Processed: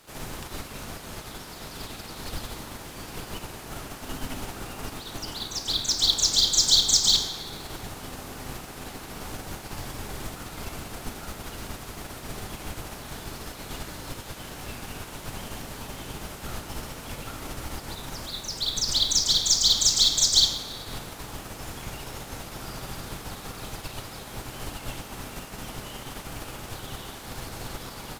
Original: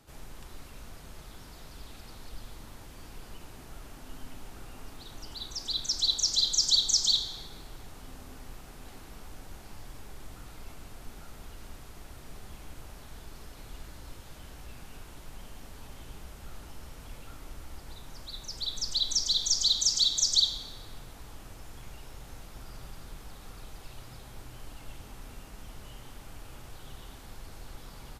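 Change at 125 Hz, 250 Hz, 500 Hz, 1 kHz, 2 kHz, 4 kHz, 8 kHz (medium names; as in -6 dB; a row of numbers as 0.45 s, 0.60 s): +9.0 dB, +11.5 dB, +12.0 dB, +12.0 dB, +12.5 dB, +5.0 dB, +6.0 dB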